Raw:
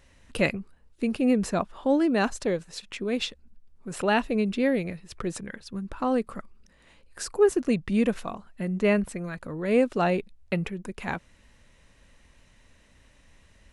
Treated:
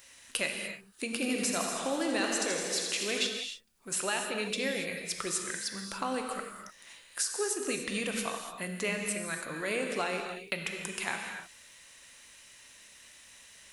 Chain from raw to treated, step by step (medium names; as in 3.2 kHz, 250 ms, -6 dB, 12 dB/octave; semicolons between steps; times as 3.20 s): tilt EQ +4.5 dB/octave; compression 4:1, threshold -31 dBFS, peak gain reduction 13 dB; gated-style reverb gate 320 ms flat, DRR 2.5 dB; 1.05–3.27 s: modulated delay 81 ms, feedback 76%, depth 69 cents, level -7 dB